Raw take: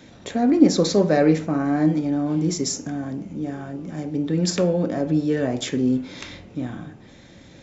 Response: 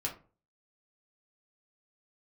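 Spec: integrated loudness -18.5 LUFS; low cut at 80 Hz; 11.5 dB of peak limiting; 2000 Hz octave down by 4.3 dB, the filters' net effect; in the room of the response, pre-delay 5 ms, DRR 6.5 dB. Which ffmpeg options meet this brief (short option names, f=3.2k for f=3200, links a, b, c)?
-filter_complex "[0:a]highpass=80,equalizer=f=2k:t=o:g=-5.5,alimiter=limit=-14dB:level=0:latency=1,asplit=2[a][b];[1:a]atrim=start_sample=2205,adelay=5[c];[b][c]afir=irnorm=-1:irlink=0,volume=-9dB[d];[a][d]amix=inputs=2:normalize=0,volume=5.5dB"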